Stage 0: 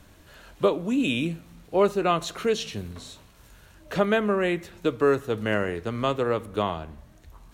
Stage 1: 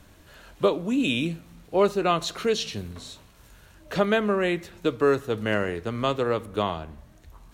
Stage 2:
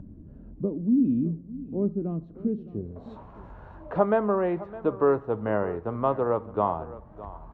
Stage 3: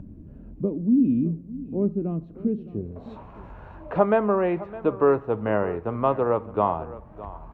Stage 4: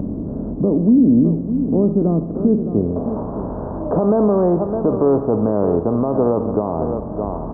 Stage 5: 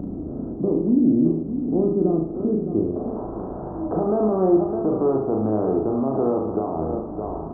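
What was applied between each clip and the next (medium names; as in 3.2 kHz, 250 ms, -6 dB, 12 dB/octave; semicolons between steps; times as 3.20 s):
dynamic bell 4.5 kHz, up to +5 dB, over -46 dBFS, Q 1.7
low-pass sweep 240 Hz -> 930 Hz, 2.63–3.13 s; upward compressor, threshold -32 dBFS; delay 611 ms -17 dB; trim -2.5 dB
peaking EQ 2.5 kHz +7 dB 0.48 oct; trim +2.5 dB
spectral levelling over time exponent 0.6; peak limiter -13.5 dBFS, peak gain reduction 9.5 dB; Gaussian low-pass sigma 9.8 samples; trim +8 dB
small resonant body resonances 340/740/1300 Hz, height 9 dB; on a send: flutter echo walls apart 6.4 m, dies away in 0.49 s; on the sum: trim -9 dB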